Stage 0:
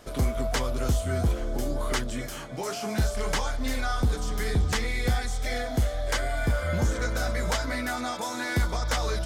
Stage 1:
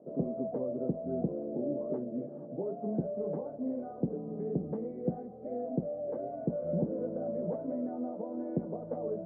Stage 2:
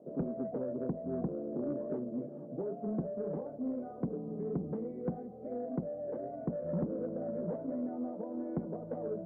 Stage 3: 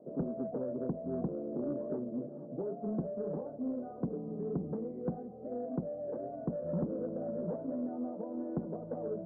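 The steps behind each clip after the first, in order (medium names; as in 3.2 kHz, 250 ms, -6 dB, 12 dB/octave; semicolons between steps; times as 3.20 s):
Chebyshev band-pass 160–600 Hz, order 3
dynamic bell 670 Hz, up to -3 dB, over -48 dBFS, Q 1.4; saturation -25.5 dBFS, distortion -16 dB
low-pass 1.6 kHz 24 dB/octave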